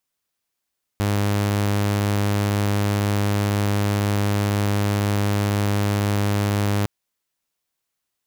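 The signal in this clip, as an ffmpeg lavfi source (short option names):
-f lavfi -i "aevalsrc='0.158*(2*mod(102*t,1)-1)':d=5.86:s=44100"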